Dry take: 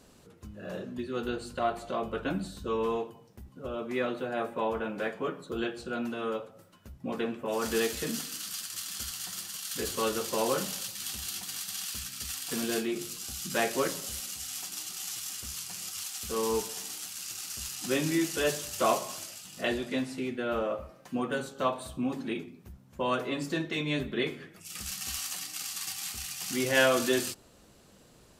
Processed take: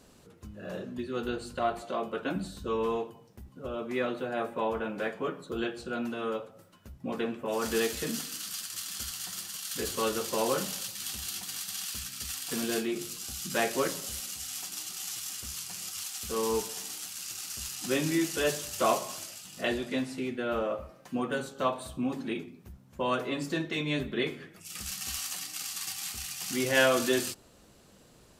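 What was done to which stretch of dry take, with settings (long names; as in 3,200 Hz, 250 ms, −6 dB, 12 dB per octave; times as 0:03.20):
0:01.82–0:02.36: high-pass filter 180 Hz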